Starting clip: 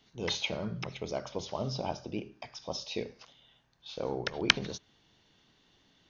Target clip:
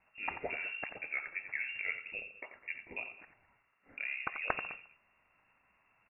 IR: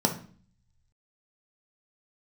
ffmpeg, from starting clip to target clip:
-filter_complex "[0:a]highpass=170,asplit=3[link_01][link_02][link_03];[link_01]afade=type=out:start_time=0.89:duration=0.02[link_04];[link_02]afreqshift=88,afade=type=in:start_time=0.89:duration=0.02,afade=type=out:start_time=1.67:duration=0.02[link_05];[link_03]afade=type=in:start_time=1.67:duration=0.02[link_06];[link_04][link_05][link_06]amix=inputs=3:normalize=0,asoftclip=type=tanh:threshold=-16.5dB,equalizer=frequency=360:width=1:gain=-9,aecho=1:1:87|207:0.316|0.119,lowpass=frequency=2500:width_type=q:width=0.5098,lowpass=frequency=2500:width_type=q:width=0.6013,lowpass=frequency=2500:width_type=q:width=0.9,lowpass=frequency=2500:width_type=q:width=2.563,afreqshift=-2900,volume=1dB"

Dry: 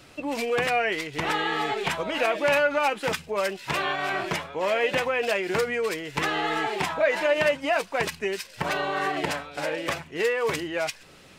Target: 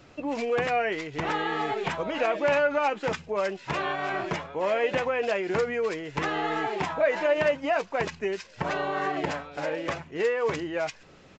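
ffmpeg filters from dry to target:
ffmpeg -i in.wav -af "equalizer=frequency=4400:width_type=o:width=2.5:gain=-7.5,aresample=16000,aresample=44100" out.wav

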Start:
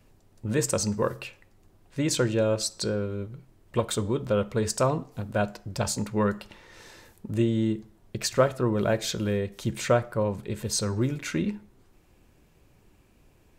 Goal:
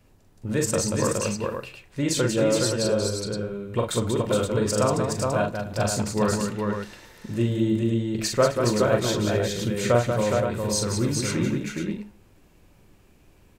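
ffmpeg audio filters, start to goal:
ffmpeg -i in.wav -af "aecho=1:1:42|186|262|417|452|522:0.631|0.501|0.119|0.668|0.224|0.473" out.wav

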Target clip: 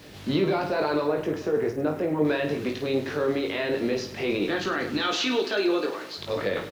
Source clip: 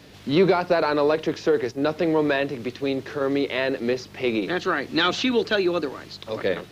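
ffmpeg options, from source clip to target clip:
ffmpeg -i in.wav -filter_complex "[0:a]asettb=1/sr,asplit=3[link_01][link_02][link_03];[link_01]atrim=end=1.074[link_04];[link_02]atrim=start=1.07:end=2.25,asetpts=PTS-STARTPTS,afade=type=in:duration=0.004:curve=qsin,afade=type=out:start_time=1.176:duration=0.004:curve=qsin,equalizer=frequency=4200:width=0.89:gain=-14.5[link_05];[link_03]atrim=start=2.246[link_06];[link_04][link_05]acrossfade=duration=0.004:curve1=hsin:curve2=qsin[link_07];[link_07][link_06]acrossfade=duration=0.004:curve1=qsin:curve2=hsin,asettb=1/sr,asplit=3[link_08][link_09][link_10];[link_08]atrim=end=4.974[link_11];[link_09]atrim=start=4.97:end=6.18,asetpts=PTS-STARTPTS,afade=type=in:duration=0.004:curve=qsin,afade=type=out:start_time=1.206:duration=0.004:curve=qsin,highpass=340[link_12];[link_10]atrim=start=6.176[link_13];[link_11][link_12]acrossfade=duration=0.004:curve1=hsin:curve2=qsin[link_14];[link_14][link_13]acrossfade=duration=0.004:curve1=qsin:curve2=hsin,alimiter=limit=-19.5dB:level=0:latency=1:release=25,acrusher=bits=9:mix=0:aa=0.000001,aecho=1:1:20|52|103.2|185.1|316.2:0.631|0.398|0.251|0.158|0.1" out.wav

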